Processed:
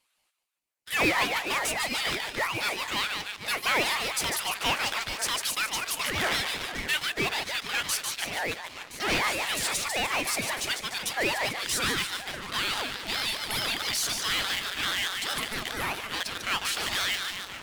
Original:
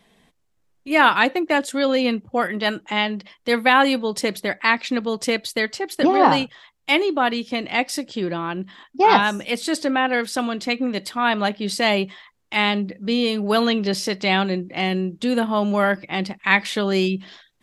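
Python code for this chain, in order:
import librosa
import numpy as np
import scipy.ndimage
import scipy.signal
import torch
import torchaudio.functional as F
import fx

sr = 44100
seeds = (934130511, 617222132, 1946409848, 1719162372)

p1 = fx.rattle_buzz(x, sr, strikes_db=-24.0, level_db=-9.0)
p2 = F.preemphasis(torch.from_numpy(p1), 0.97).numpy()
p3 = p2 + fx.echo_split(p2, sr, split_hz=1200.0, low_ms=537, high_ms=147, feedback_pct=52, wet_db=-8.5, dry=0)
p4 = fx.filter_sweep_highpass(p3, sr, from_hz=1300.0, to_hz=81.0, start_s=11.45, end_s=13.58, q=4.3)
p5 = fx.fuzz(p4, sr, gain_db=38.0, gate_db=-46.0)
p6 = p4 + (p5 * librosa.db_to_amplitude(-9.5))
p7 = p6 + 10.0 ** (-15.5 / 20.0) * np.pad(p6, (int(1019 * sr / 1000.0), 0))[:len(p6)]
p8 = fx.ring_lfo(p7, sr, carrier_hz=760.0, swing_pct=45, hz=4.7)
y = p8 * librosa.db_to_amplitude(-4.0)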